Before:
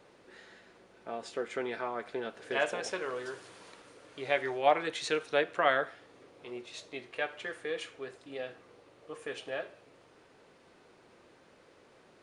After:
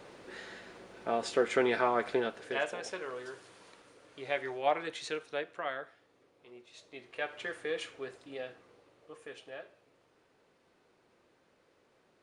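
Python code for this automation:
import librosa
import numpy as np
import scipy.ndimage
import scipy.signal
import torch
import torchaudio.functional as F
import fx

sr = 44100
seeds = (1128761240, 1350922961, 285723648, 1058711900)

y = fx.gain(x, sr, db=fx.line((2.12, 7.5), (2.65, -4.0), (4.9, -4.0), (5.75, -11.0), (6.65, -11.0), (7.41, 0.5), (8.04, 0.5), (9.48, -8.5)))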